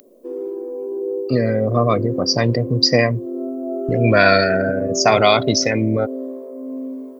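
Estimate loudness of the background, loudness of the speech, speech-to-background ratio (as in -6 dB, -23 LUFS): -27.0 LUFS, -17.0 LUFS, 10.0 dB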